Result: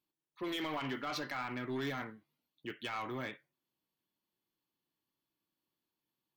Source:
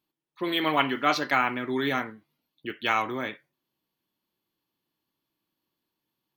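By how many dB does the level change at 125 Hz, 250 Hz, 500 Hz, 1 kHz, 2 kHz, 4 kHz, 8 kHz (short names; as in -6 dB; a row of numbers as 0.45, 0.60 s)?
-6.0, -10.0, -11.5, -14.5, -13.5, -12.0, -8.5 dB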